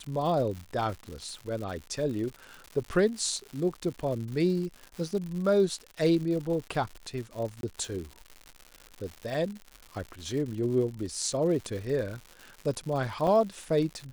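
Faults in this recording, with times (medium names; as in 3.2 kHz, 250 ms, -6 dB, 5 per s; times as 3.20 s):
crackle 170 per s -36 dBFS
7.61–7.63 s: dropout 22 ms
13.27 s: dropout 3.7 ms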